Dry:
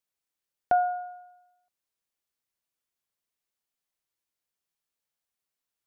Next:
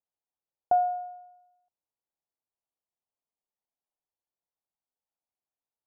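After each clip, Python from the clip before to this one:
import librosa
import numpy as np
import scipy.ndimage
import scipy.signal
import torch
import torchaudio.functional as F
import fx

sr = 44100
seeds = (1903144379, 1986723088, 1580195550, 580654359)

y = fx.ladder_lowpass(x, sr, hz=1000.0, resonance_pct=45)
y = y * librosa.db_to_amplitude(3.0)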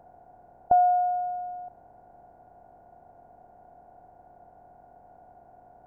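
y = fx.bin_compress(x, sr, power=0.4)
y = fx.low_shelf(y, sr, hz=330.0, db=11.0)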